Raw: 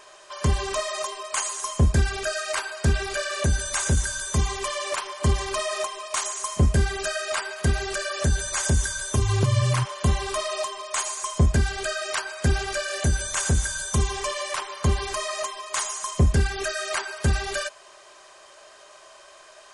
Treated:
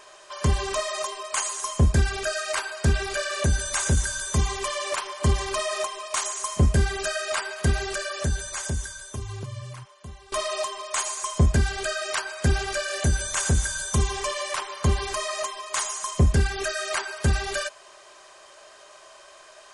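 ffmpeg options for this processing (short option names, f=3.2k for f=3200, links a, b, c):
-filter_complex "[0:a]asplit=2[a][b];[a]atrim=end=10.32,asetpts=PTS-STARTPTS,afade=t=out:st=7.79:d=2.53:c=qua:silence=0.0944061[c];[b]atrim=start=10.32,asetpts=PTS-STARTPTS,afade=t=in:d=0.004:c=hsin:silence=0.0944061[d];[c][d]concat=n=2:v=0:a=1"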